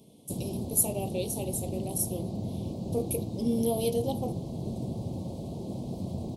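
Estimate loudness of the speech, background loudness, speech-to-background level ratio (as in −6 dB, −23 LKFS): −31.5 LKFS, −36.0 LKFS, 4.5 dB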